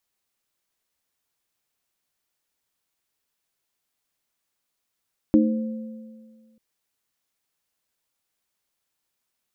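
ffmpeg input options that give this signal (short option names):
-f lavfi -i "aevalsrc='0.158*pow(10,-3*t/1.8)*sin(2*PI*223*t)+0.282*pow(10,-3*t/0.45)*sin(2*PI*309*t)+0.0501*pow(10,-3*t/1.77)*sin(2*PI*521*t)':d=1.24:s=44100"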